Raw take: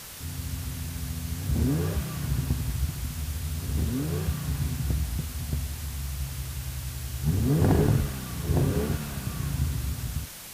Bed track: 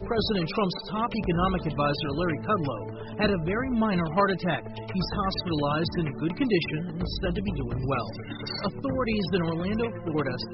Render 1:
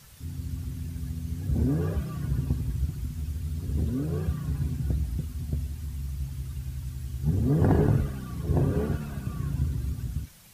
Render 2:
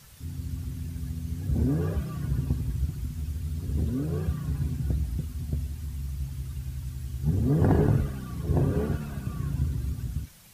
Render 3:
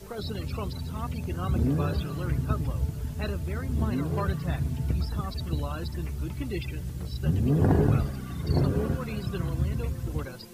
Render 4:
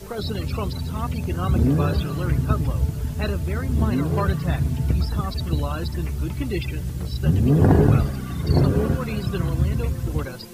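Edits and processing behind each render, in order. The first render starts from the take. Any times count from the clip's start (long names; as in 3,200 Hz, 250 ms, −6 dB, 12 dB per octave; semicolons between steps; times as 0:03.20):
broadband denoise 13 dB, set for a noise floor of −39 dBFS
no processing that can be heard
mix in bed track −10.5 dB
level +6.5 dB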